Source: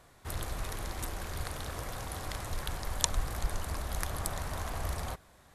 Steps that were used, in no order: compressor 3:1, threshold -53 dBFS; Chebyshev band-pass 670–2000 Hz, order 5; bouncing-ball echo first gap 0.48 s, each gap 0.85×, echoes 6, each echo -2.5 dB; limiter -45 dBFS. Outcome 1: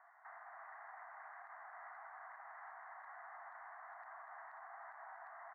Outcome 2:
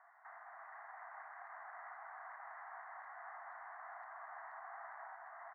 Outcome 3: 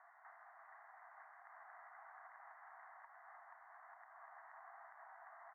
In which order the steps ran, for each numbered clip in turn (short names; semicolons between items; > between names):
Chebyshev band-pass > compressor > bouncing-ball echo > limiter; Chebyshev band-pass > compressor > limiter > bouncing-ball echo; bouncing-ball echo > compressor > Chebyshev band-pass > limiter